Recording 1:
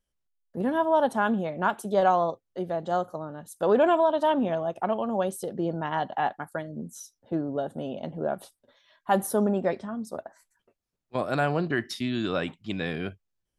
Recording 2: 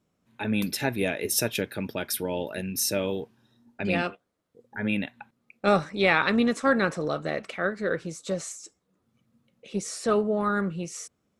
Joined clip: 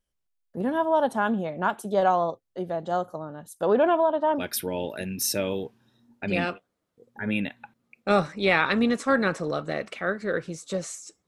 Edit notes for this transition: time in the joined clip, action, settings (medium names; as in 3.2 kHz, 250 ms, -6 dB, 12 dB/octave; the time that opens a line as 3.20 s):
recording 1
3.65–4.43 s: low-pass 6 kHz -> 1.4 kHz
4.39 s: go over to recording 2 from 1.96 s, crossfade 0.08 s